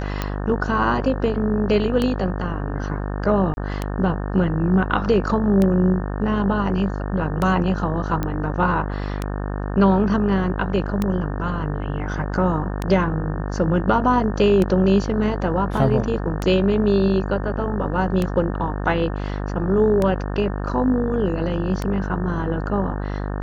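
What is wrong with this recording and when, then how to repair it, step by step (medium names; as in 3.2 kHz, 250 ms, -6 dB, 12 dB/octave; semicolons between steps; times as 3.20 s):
buzz 50 Hz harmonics 36 -26 dBFS
tick 33 1/3 rpm -9 dBFS
3.54–3.57 s: dropout 31 ms
8.23 s: pop -11 dBFS
15.77 s: dropout 3.2 ms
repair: de-click; de-hum 50 Hz, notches 36; interpolate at 3.54 s, 31 ms; interpolate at 15.77 s, 3.2 ms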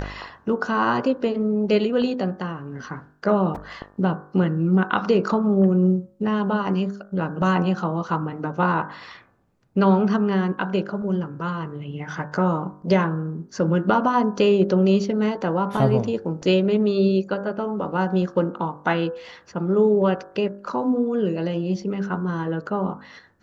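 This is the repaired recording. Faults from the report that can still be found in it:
nothing left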